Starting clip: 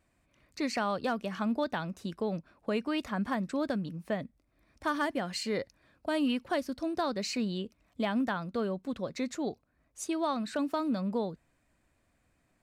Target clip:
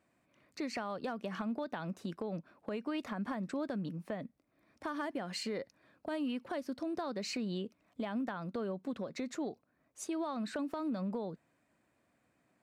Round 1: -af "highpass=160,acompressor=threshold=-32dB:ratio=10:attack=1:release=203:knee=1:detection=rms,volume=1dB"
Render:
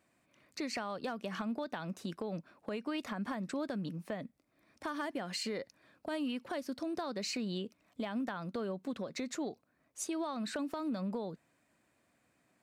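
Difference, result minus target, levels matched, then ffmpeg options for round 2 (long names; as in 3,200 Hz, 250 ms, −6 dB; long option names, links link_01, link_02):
4,000 Hz band +3.0 dB
-af "highpass=160,highshelf=frequency=2500:gain=-6.5,acompressor=threshold=-32dB:ratio=10:attack=1:release=203:knee=1:detection=rms,volume=1dB"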